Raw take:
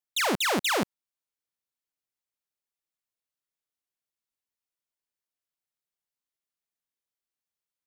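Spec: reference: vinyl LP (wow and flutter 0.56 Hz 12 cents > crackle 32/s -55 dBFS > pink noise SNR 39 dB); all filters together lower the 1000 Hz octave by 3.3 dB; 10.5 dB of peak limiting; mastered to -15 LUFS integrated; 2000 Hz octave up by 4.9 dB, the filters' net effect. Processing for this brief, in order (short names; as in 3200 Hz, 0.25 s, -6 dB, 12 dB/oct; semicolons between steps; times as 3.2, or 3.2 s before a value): bell 1000 Hz -7 dB; bell 2000 Hz +8 dB; limiter -26 dBFS; wow and flutter 0.56 Hz 12 cents; crackle 32/s -55 dBFS; pink noise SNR 39 dB; gain +17.5 dB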